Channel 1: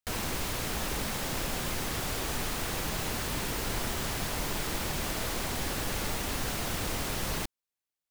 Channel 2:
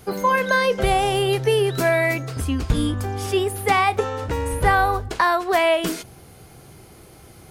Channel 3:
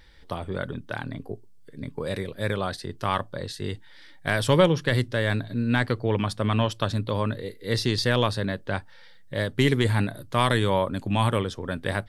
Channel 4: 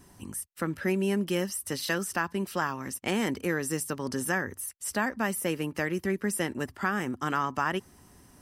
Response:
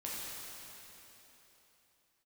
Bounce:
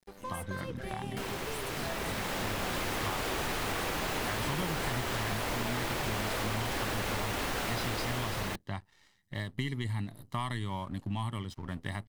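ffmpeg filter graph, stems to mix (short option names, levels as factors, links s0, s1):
-filter_complex "[0:a]bass=f=250:g=-7,treble=f=4000:g=-8,dynaudnorm=f=180:g=13:m=3.35,adelay=1100,volume=1.19[s0];[1:a]volume=0.1[s1];[2:a]adynamicequalizer=threshold=0.0126:dfrequency=1000:dqfactor=0.83:tfrequency=1000:tqfactor=0.83:attack=5:release=100:ratio=0.375:range=3:mode=cutabove:tftype=bell,aecho=1:1:1:0.81,volume=0.473[s2];[3:a]acompressor=threshold=0.0224:ratio=6,volume=0.501[s3];[s0][s1][s2][s3]amix=inputs=4:normalize=0,aeval=exprs='sgn(val(0))*max(abs(val(0))-0.00376,0)':c=same,acompressor=threshold=0.0224:ratio=3"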